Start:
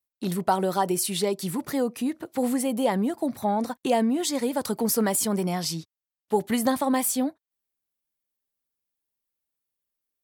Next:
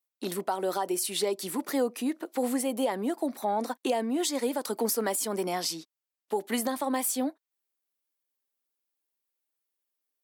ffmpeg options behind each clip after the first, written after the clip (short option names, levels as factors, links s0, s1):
-af "highpass=f=260:w=0.5412,highpass=f=260:w=1.3066,alimiter=limit=0.119:level=0:latency=1:release=253"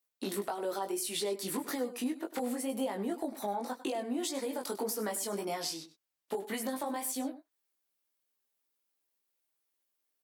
-af "acompressor=threshold=0.0178:ratio=6,aecho=1:1:99:0.188,flanger=delay=18.5:depth=2.2:speed=1.8,volume=1.88"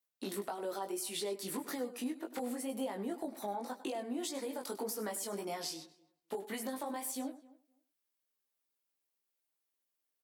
-filter_complex "[0:a]asplit=2[s0][s1];[s1]adelay=258,lowpass=f=1700:p=1,volume=0.0891,asplit=2[s2][s3];[s3]adelay=258,lowpass=f=1700:p=1,volume=0.16[s4];[s0][s2][s4]amix=inputs=3:normalize=0,volume=0.631"